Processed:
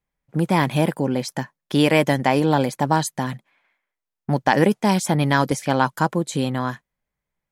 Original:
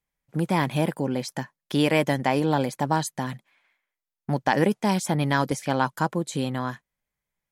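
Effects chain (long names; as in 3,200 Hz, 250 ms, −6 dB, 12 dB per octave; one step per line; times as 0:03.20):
one half of a high-frequency compander decoder only
level +4.5 dB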